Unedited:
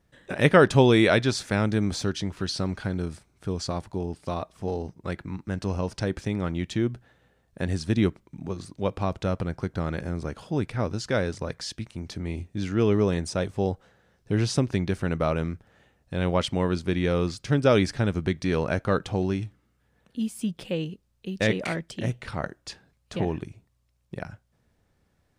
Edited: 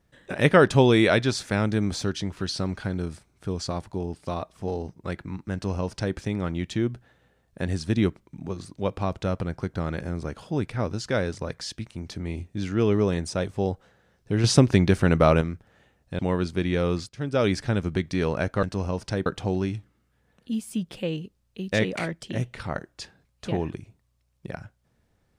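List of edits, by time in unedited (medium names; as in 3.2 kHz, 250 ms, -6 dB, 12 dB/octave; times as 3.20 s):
5.53–6.16 s: copy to 18.94 s
14.44–15.41 s: gain +7 dB
16.19–16.50 s: delete
17.40–17.90 s: fade in linear, from -15 dB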